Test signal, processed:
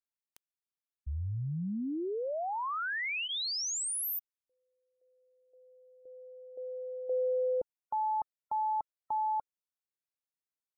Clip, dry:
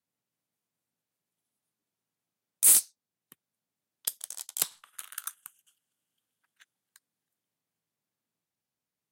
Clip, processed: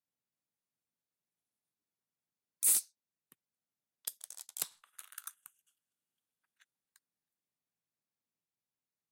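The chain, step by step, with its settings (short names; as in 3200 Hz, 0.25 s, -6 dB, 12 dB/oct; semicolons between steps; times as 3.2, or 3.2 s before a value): spectral gate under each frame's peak -30 dB strong; notch 3100 Hz, Q 19; gain -8.5 dB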